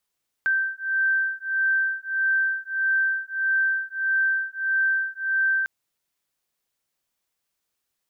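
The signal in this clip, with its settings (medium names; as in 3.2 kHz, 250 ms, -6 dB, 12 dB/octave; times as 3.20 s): beating tones 1.56 kHz, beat 1.6 Hz, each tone -24 dBFS 5.20 s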